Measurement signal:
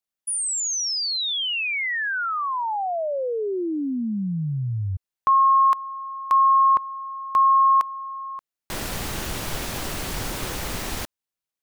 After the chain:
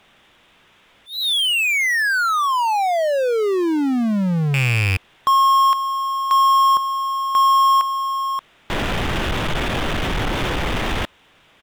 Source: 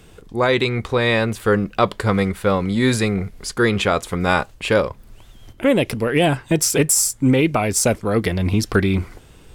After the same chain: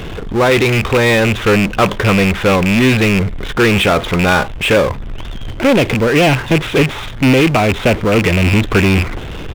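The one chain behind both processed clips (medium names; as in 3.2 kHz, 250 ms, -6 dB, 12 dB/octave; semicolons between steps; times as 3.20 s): rattle on loud lows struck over -23 dBFS, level -12 dBFS; resampled via 8 kHz; power-law waveshaper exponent 0.5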